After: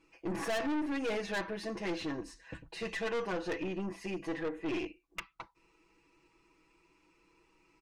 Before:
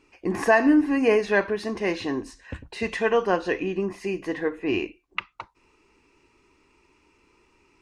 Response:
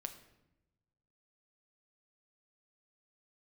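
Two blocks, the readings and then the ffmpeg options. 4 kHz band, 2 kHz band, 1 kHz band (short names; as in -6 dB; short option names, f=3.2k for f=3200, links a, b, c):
-6.5 dB, -12.5 dB, -12.5 dB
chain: -af "aecho=1:1:6.1:0.97,aeval=exprs='(tanh(14.1*val(0)+0.35)-tanh(0.35))/14.1':c=same,volume=-8dB"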